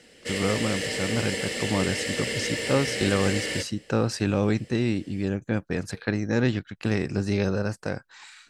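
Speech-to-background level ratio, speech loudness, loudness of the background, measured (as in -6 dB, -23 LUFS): 1.5 dB, -27.5 LUFS, -29.0 LUFS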